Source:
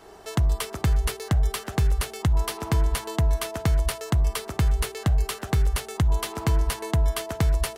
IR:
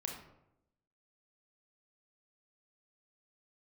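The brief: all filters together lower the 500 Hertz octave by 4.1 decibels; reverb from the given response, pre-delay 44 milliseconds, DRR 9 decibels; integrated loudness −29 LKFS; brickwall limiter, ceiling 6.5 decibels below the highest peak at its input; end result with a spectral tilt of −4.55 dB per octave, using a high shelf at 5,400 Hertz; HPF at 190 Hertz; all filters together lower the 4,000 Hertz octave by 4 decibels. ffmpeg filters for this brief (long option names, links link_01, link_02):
-filter_complex "[0:a]highpass=190,equalizer=frequency=500:width_type=o:gain=-5.5,equalizer=frequency=4000:width_type=o:gain=-3,highshelf=frequency=5400:gain=-5.5,alimiter=limit=-22dB:level=0:latency=1,asplit=2[link_01][link_02];[1:a]atrim=start_sample=2205,adelay=44[link_03];[link_02][link_03]afir=irnorm=-1:irlink=0,volume=-8.5dB[link_04];[link_01][link_04]amix=inputs=2:normalize=0,volume=7dB"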